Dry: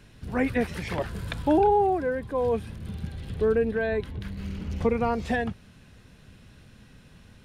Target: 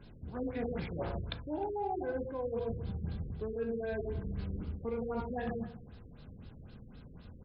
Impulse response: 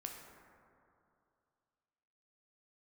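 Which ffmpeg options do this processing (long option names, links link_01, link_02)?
-filter_complex "[1:a]atrim=start_sample=2205,afade=type=out:start_time=0.22:duration=0.01,atrim=end_sample=10143[link_01];[0:a][link_01]afir=irnorm=-1:irlink=0,aexciter=amount=2.5:drive=6.9:freq=3400,asplit=2[link_02][link_03];[link_03]adynamicsmooth=sensitivity=7:basefreq=1700,volume=2dB[link_04];[link_02][link_04]amix=inputs=2:normalize=0,asplit=2[link_05][link_06];[link_06]adelay=136,lowpass=frequency=2000:poles=1,volume=-19dB,asplit=2[link_07][link_08];[link_08]adelay=136,lowpass=frequency=2000:poles=1,volume=0.37,asplit=2[link_09][link_10];[link_10]adelay=136,lowpass=frequency=2000:poles=1,volume=0.37[link_11];[link_05][link_07][link_09][link_11]amix=inputs=4:normalize=0,areverse,acompressor=threshold=-30dB:ratio=10,areverse,bandreject=frequency=1800:width=9.7,afftfilt=real='re*lt(b*sr/1024,540*pow(5400/540,0.5+0.5*sin(2*PI*3.9*pts/sr)))':imag='im*lt(b*sr/1024,540*pow(5400/540,0.5+0.5*sin(2*PI*3.9*pts/sr)))':win_size=1024:overlap=0.75,volume=-3dB"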